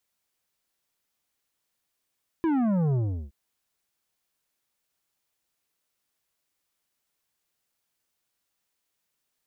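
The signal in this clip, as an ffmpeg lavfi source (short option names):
-f lavfi -i "aevalsrc='0.075*clip((0.87-t)/0.37,0,1)*tanh(3.16*sin(2*PI*340*0.87/log(65/340)*(exp(log(65/340)*t/0.87)-1)))/tanh(3.16)':d=0.87:s=44100"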